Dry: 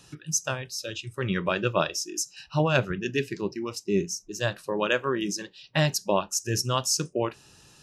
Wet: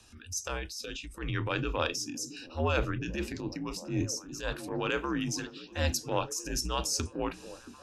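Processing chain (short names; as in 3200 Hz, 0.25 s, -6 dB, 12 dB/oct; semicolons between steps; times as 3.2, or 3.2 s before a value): frequency shift -67 Hz; transient shaper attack -9 dB, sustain +6 dB; delay with a stepping band-pass 0.675 s, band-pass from 240 Hz, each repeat 0.7 oct, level -9.5 dB; gain -4 dB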